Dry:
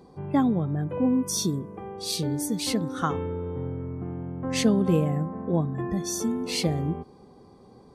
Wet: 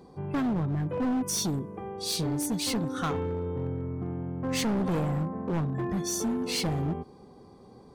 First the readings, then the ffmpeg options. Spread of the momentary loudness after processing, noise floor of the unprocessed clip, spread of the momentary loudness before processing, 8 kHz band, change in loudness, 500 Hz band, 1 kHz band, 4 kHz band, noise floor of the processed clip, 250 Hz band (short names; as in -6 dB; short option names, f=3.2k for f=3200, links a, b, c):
7 LU, -52 dBFS, 10 LU, -1.0 dB, -3.0 dB, -3.5 dB, -2.0 dB, -1.5 dB, -52 dBFS, -4.0 dB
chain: -af "volume=25dB,asoftclip=hard,volume=-25dB"